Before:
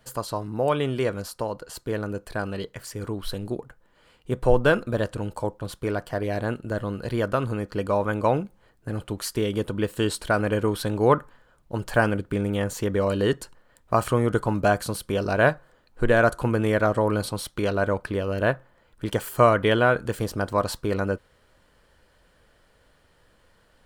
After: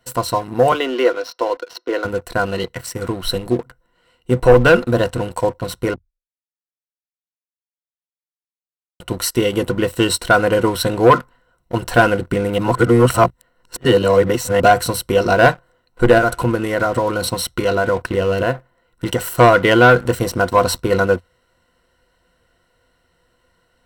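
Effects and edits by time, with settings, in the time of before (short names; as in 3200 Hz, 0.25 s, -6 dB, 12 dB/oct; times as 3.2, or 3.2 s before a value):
0.72–2.05 Chebyshev band-pass 280–5600 Hz, order 5
5.94–9 mute
12.58–14.6 reverse
16.18–19.28 compressor, threshold -22 dBFS
whole clip: ripple EQ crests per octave 2, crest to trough 12 dB; sample leveller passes 2; low shelf 140 Hz -3 dB; gain +1.5 dB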